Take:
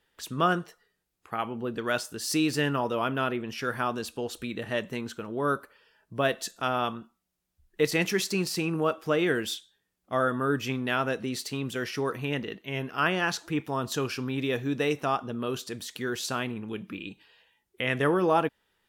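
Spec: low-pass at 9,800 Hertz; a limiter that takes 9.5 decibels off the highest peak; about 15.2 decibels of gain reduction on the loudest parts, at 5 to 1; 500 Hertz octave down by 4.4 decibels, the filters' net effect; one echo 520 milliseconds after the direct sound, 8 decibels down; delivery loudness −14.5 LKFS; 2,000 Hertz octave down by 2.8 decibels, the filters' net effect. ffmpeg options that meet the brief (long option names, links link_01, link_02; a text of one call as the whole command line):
ffmpeg -i in.wav -af "lowpass=9800,equalizer=frequency=500:width_type=o:gain=-5.5,equalizer=frequency=2000:width_type=o:gain=-3.5,acompressor=threshold=-40dB:ratio=5,alimiter=level_in=9.5dB:limit=-24dB:level=0:latency=1,volume=-9.5dB,aecho=1:1:520:0.398,volume=29.5dB" out.wav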